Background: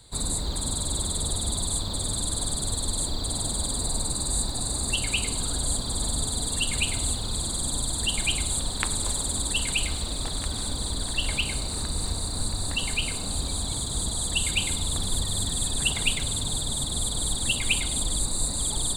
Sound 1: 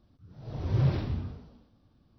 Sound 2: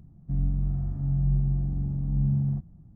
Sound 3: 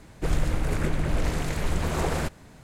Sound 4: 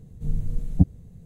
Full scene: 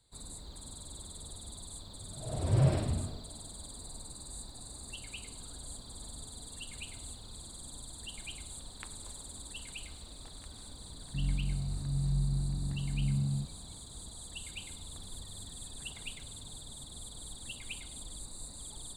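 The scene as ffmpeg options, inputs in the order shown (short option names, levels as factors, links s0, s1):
-filter_complex "[0:a]volume=0.119[s0];[1:a]equalizer=f=640:t=o:w=0.4:g=10,atrim=end=2.18,asetpts=PTS-STARTPTS,volume=0.891,afade=t=in:d=0.004:c=hsin,afade=t=out:st=2.176:d=0.004:c=hsin,adelay=1790[s1];[2:a]atrim=end=2.95,asetpts=PTS-STARTPTS,volume=0.473,afade=t=in:d=0.004:c=hsin,afade=t=out:st=2.946:d=0.004:c=hsin,adelay=10850[s2];[s0][s1][s2]amix=inputs=3:normalize=0"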